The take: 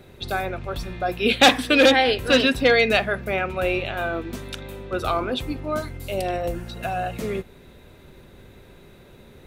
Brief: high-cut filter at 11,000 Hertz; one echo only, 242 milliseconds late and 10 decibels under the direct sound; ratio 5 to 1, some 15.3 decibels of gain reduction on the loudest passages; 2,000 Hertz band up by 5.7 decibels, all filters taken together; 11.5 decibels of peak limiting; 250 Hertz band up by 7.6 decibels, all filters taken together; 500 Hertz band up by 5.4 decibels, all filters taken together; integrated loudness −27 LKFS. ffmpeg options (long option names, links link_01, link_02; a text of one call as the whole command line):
ffmpeg -i in.wav -af "lowpass=11000,equalizer=frequency=250:width_type=o:gain=7.5,equalizer=frequency=500:width_type=o:gain=4,equalizer=frequency=2000:width_type=o:gain=7,acompressor=threshold=-23dB:ratio=5,alimiter=limit=-18dB:level=0:latency=1,aecho=1:1:242:0.316,volume=1dB" out.wav